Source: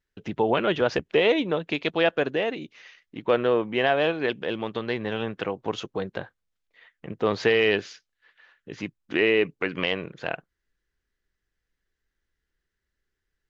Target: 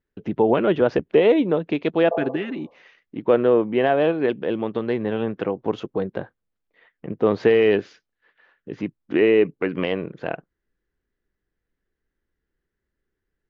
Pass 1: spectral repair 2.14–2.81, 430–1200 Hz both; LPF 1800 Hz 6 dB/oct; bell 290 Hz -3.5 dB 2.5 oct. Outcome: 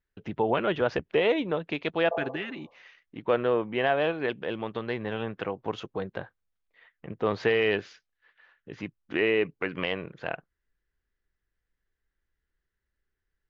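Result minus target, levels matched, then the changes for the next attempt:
250 Hz band -2.5 dB
change: bell 290 Hz +7 dB 2.5 oct

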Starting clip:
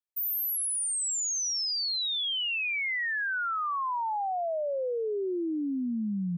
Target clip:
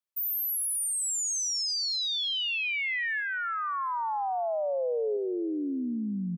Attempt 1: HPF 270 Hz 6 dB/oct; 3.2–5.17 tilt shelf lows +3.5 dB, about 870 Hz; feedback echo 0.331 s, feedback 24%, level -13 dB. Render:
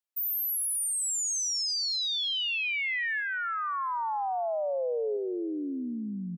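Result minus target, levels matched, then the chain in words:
125 Hz band -3.5 dB
HPF 110 Hz 6 dB/oct; 3.2–5.17 tilt shelf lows +3.5 dB, about 870 Hz; feedback echo 0.331 s, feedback 24%, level -13 dB

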